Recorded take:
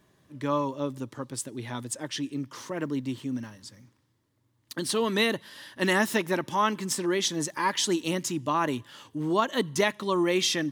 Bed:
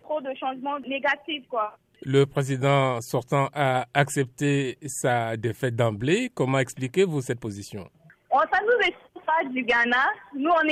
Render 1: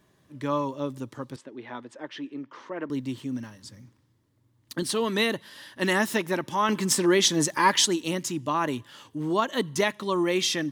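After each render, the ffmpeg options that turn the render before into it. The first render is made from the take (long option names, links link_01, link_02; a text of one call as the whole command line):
ffmpeg -i in.wav -filter_complex "[0:a]asettb=1/sr,asplit=3[link_01][link_02][link_03];[link_01]atrim=end=1.364[link_04];[link_02]atrim=start=1.36:end=2.9,asetpts=PTS-STARTPTS,afade=type=in:duration=0.004:curve=qsin,afade=type=out:start_time=1.536:duration=0.004:curve=qsin,highpass=290,lowpass=2300[link_05];[link_03]atrim=start=2.896[link_06];[link_04][link_05]acrossfade=duration=0.004:curve1=hsin:curve2=qsin[link_07];[link_07][link_06]acrossfade=duration=0.004:curve1=qsin:curve2=hsin,asettb=1/sr,asplit=3[link_08][link_09][link_10];[link_08]atrim=end=3.644[link_11];[link_09]atrim=start=3.64:end=4.83,asetpts=PTS-STARTPTS,afade=type=in:duration=0.004:curve=qsin,afade=type=out:start_time=1.186:duration=0.004:curve=qsin,lowshelf=frequency=350:gain=6[link_12];[link_10]atrim=start=4.826[link_13];[link_11][link_12]acrossfade=duration=0.004:curve1=hsin:curve2=qsin[link_14];[link_14][link_13]acrossfade=duration=0.004:curve1=qsin:curve2=hsin,asplit=3[link_15][link_16][link_17];[link_15]atrim=end=6.692[link_18];[link_16]atrim=start=6.688:end=7.862,asetpts=PTS-STARTPTS,volume=6dB[link_19];[link_17]atrim=start=7.858[link_20];[link_18][link_19]acrossfade=duration=0.004:curve1=hsin:curve2=hsin[link_21];[link_21][link_20]acrossfade=duration=0.004:curve1=hsin:curve2=hsin" out.wav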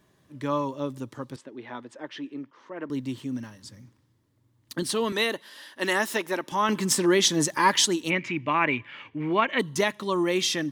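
ffmpeg -i in.wav -filter_complex "[0:a]asettb=1/sr,asplit=3[link_01][link_02][link_03];[link_01]atrim=end=5.124[link_04];[link_02]atrim=start=5.12:end=6.52,asetpts=PTS-STARTPTS,afade=type=in:duration=0.004:curve=qsin,afade=type=out:start_time=1.396:duration=0.004:curve=qsin,highpass=310[link_05];[link_03]atrim=start=6.516[link_06];[link_04][link_05]acrossfade=duration=0.004:curve1=hsin:curve2=qsin[link_07];[link_07][link_06]acrossfade=duration=0.004:curve1=qsin:curve2=hsin,asplit=3[link_08][link_09][link_10];[link_08]afade=type=out:start_time=8.09:duration=0.02[link_11];[link_09]lowpass=frequency=2300:width_type=q:width=13,afade=type=in:start_time=8.09:duration=0.02,afade=type=out:start_time=9.58:duration=0.02[link_12];[link_10]afade=type=in:start_time=9.58:duration=0.02[link_13];[link_11][link_12][link_13]amix=inputs=3:normalize=0,asplit=2[link_14][link_15];[link_14]atrim=end=2.51,asetpts=PTS-STARTPTS,afade=type=out:start_time=2.506:duration=0.004:curve=hsin:silence=0.158489[link_16];[link_15]atrim=start=2.51,asetpts=PTS-STARTPTS,afade=type=in:duration=0.55:curve=qsin:silence=0.158489[link_17];[link_16][link_17]concat=n=2:v=0:a=1" out.wav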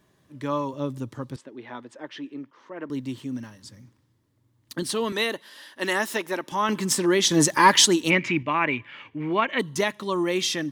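ffmpeg -i in.wav -filter_complex "[0:a]asettb=1/sr,asplit=3[link_01][link_02][link_03];[link_01]atrim=end=0.734[link_04];[link_02]atrim=start=0.73:end=1.37,asetpts=PTS-STARTPTS,afade=type=in:duration=0.004:curve=qsin,afade=type=out:start_time=0.636:duration=0.004:curve=qsin,lowshelf=frequency=140:gain=10.5[link_05];[link_03]atrim=start=1.366[link_06];[link_04][link_05]acrossfade=duration=0.004:curve1=hsin:curve2=qsin[link_07];[link_07][link_06]acrossfade=duration=0.004:curve1=qsin:curve2=hsin,asettb=1/sr,asplit=3[link_08][link_09][link_10];[link_08]atrim=end=7.314[link_11];[link_09]atrim=start=7.31:end=8.43,asetpts=PTS-STARTPTS,afade=type=in:duration=0.004:curve=qsin,afade=type=out:start_time=1.116:duration=0.004:curve=qsin,acontrast=37[link_12];[link_10]atrim=start=8.426[link_13];[link_11][link_12]acrossfade=duration=0.004:curve1=hsin:curve2=qsin[link_14];[link_14][link_13]acrossfade=duration=0.004:curve1=qsin:curve2=hsin" out.wav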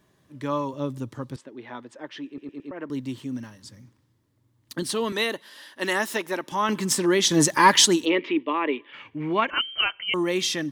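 ffmpeg -i in.wav -filter_complex "[0:a]asplit=3[link_01][link_02][link_03];[link_01]afade=type=out:start_time=8.04:duration=0.02[link_04];[link_02]highpass=frequency=290:width=0.5412,highpass=frequency=290:width=1.3066,equalizer=frequency=290:width_type=q:width=4:gain=5,equalizer=frequency=430:width_type=q:width=4:gain=9,equalizer=frequency=730:width_type=q:width=4:gain=-6,equalizer=frequency=1500:width_type=q:width=4:gain=-9,equalizer=frequency=2300:width_type=q:width=4:gain=-9,equalizer=frequency=3400:width_type=q:width=4:gain=5,lowpass=frequency=3700:width=0.5412,lowpass=frequency=3700:width=1.3066,afade=type=in:start_time=8.04:duration=0.02,afade=type=out:start_time=8.92:duration=0.02[link_05];[link_03]afade=type=in:start_time=8.92:duration=0.02[link_06];[link_04][link_05][link_06]amix=inputs=3:normalize=0,asettb=1/sr,asplit=3[link_07][link_08][link_09];[link_07]atrim=end=9.504[link_10];[link_08]atrim=start=9.5:end=10.14,asetpts=PTS-STARTPTS,afade=type=in:duration=0.004:curve=qsin,afade=type=out:start_time=0.636:duration=0.004:curve=qsin,lowpass=frequency=2800:width_type=q:width=0.5098,lowpass=frequency=2800:width_type=q:width=0.6013,lowpass=frequency=2800:width_type=q:width=0.9,lowpass=frequency=2800:width_type=q:width=2.563,afreqshift=-3300[link_11];[link_09]atrim=start=10.136[link_12];[link_10][link_11]acrossfade=duration=0.004:curve1=hsin:curve2=qsin[link_13];[link_13][link_12]acrossfade=duration=0.004:curve1=qsin:curve2=hsin,asplit=5[link_14][link_15][link_16][link_17][link_18];[link_14]atrim=end=2.382[link_19];[link_15]atrim=start=2.268:end=2.382[link_20];[link_16]atrim=start=2.268:end=2.382[link_21];[link_17]atrim=start=2.268:end=2.382[link_22];[link_18]atrim=start=2.708[link_23];[link_19][link_20]acrossfade=duration=0.004:curve1=hsin:curve2=hsin[link_24];[link_24][link_21]acrossfade=duration=0.004:curve1=hsin:curve2=hsin[link_25];[link_25][link_22]acrossfade=duration=0.004:curve1=hsin:curve2=hsin[link_26];[link_26][link_23]acrossfade=duration=0.004:curve1=hsin:curve2=hsin" out.wav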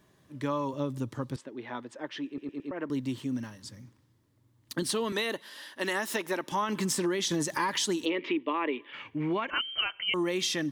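ffmpeg -i in.wav -af "alimiter=limit=-15dB:level=0:latency=1:release=93,acompressor=threshold=-26dB:ratio=6" out.wav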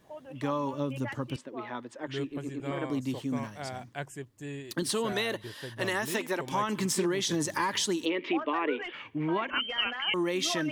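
ffmpeg -i in.wav -i bed.wav -filter_complex "[1:a]volume=-16.5dB[link_01];[0:a][link_01]amix=inputs=2:normalize=0" out.wav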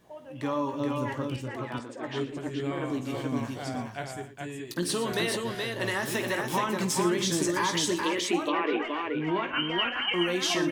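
ffmpeg -i in.wav -filter_complex "[0:a]asplit=2[link_01][link_02];[link_02]adelay=17,volume=-9dB[link_03];[link_01][link_03]amix=inputs=2:normalize=0,aecho=1:1:51|117|286|424:0.237|0.2|0.106|0.668" out.wav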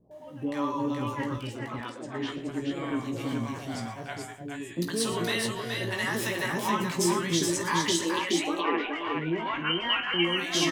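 ffmpeg -i in.wav -filter_complex "[0:a]asplit=2[link_01][link_02];[link_02]adelay=18,volume=-7dB[link_03];[link_01][link_03]amix=inputs=2:normalize=0,acrossover=split=630[link_04][link_05];[link_05]adelay=110[link_06];[link_04][link_06]amix=inputs=2:normalize=0" out.wav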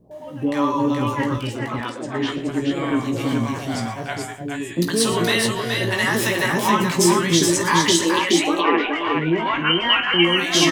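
ffmpeg -i in.wav -af "volume=9.5dB" out.wav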